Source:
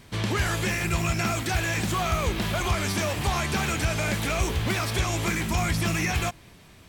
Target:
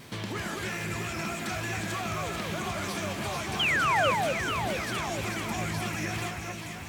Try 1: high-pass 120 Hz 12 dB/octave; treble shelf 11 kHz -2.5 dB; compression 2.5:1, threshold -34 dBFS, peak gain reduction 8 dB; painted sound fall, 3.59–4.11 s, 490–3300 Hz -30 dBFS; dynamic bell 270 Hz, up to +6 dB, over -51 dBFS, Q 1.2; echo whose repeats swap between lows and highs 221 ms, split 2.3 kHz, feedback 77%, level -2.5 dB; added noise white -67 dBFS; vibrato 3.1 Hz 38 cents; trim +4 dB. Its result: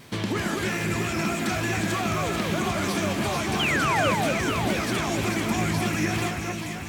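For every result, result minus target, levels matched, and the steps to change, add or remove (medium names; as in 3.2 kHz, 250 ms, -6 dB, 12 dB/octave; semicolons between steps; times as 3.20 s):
compression: peak gain reduction -5 dB; 250 Hz band +5.0 dB
change: compression 2.5:1, threshold -42.5 dBFS, peak gain reduction 13 dB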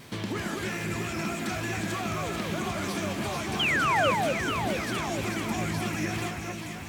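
250 Hz band +3.5 dB
remove: dynamic bell 270 Hz, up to +6 dB, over -51 dBFS, Q 1.2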